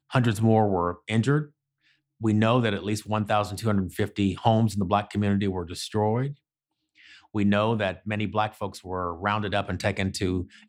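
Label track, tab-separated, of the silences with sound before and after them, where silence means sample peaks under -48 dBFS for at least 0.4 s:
1.490000	2.200000	silence
6.350000	6.990000	silence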